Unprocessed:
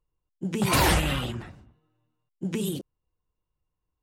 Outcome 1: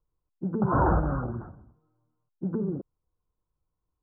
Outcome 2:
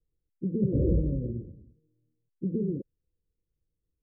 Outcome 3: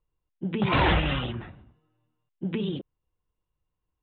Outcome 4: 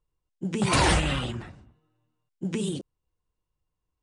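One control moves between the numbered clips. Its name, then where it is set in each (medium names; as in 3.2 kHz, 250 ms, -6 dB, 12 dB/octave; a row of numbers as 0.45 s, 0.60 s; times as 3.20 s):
steep low-pass, frequency: 1.5 kHz, 540 Hz, 3.7 kHz, 10 kHz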